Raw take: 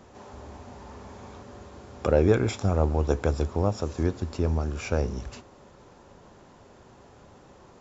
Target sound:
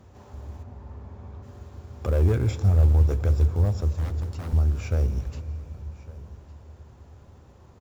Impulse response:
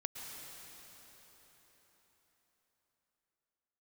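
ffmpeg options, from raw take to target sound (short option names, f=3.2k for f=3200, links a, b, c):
-filter_complex "[0:a]asoftclip=type=tanh:threshold=-15dB,acrusher=bits=6:mode=log:mix=0:aa=0.000001,asplit=3[a][b][c];[a]afade=t=out:st=0.62:d=0.02[d];[b]lowpass=f=1.6k:p=1,afade=t=in:st=0.62:d=0.02,afade=t=out:st=1.42:d=0.02[e];[c]afade=t=in:st=1.42:d=0.02[f];[d][e][f]amix=inputs=3:normalize=0,asettb=1/sr,asplit=3[g][h][i];[g]atrim=end=3.884[j];[h]atrim=start=3.88:end=4.53,asetpts=PTS-STARTPTS,afade=t=in:d=0.004:c=qsin,afade=t=out:st=0.646:d=0.004:c=qsin,aeval=exprs='0.0335*(abs(mod(val(0)/0.0335+3,4)-2)-1)':c=same[k];[i]atrim=start=4.526[l];[j][k]acrossfade=d=0.004:c1=hsin:c2=qsin[m];[m][l]acrossfade=d=0.004:c1=qsin:c2=hsin,equalizer=f=82:t=o:w=1.5:g=13,aecho=1:1:1157:0.0944,asplit=2[n][o];[1:a]atrim=start_sample=2205,lowshelf=f=220:g=9.5[p];[o][p]afir=irnorm=-1:irlink=0,volume=-10.5dB[q];[n][q]amix=inputs=2:normalize=0,volume=-7.5dB"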